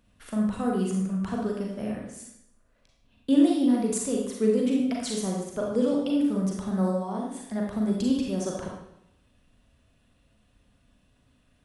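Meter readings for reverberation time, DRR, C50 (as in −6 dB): 0.80 s, −2.0 dB, 1.5 dB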